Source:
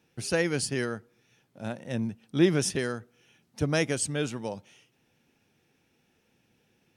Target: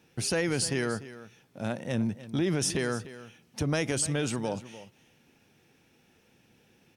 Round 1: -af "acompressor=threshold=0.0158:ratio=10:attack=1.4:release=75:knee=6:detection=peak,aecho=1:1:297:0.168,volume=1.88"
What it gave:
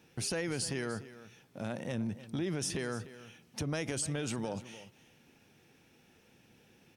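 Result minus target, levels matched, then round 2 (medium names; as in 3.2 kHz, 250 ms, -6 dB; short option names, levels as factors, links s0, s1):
compression: peak gain reduction +7 dB
-af "acompressor=threshold=0.0398:ratio=10:attack=1.4:release=75:knee=6:detection=peak,aecho=1:1:297:0.168,volume=1.88"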